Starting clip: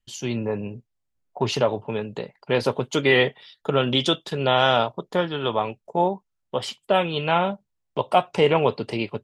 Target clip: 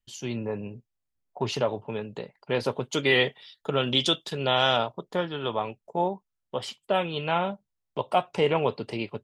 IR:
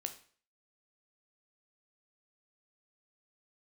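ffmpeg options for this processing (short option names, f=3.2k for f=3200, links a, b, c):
-filter_complex "[0:a]asplit=3[a][b][c];[a]afade=t=out:st=2.91:d=0.02[d];[b]adynamicequalizer=threshold=0.0251:dfrequency=2500:dqfactor=0.7:tfrequency=2500:tqfactor=0.7:attack=5:release=100:ratio=0.375:range=3:mode=boostabove:tftype=highshelf,afade=t=in:st=2.91:d=0.02,afade=t=out:st=4.76:d=0.02[e];[c]afade=t=in:st=4.76:d=0.02[f];[d][e][f]amix=inputs=3:normalize=0,volume=-5dB"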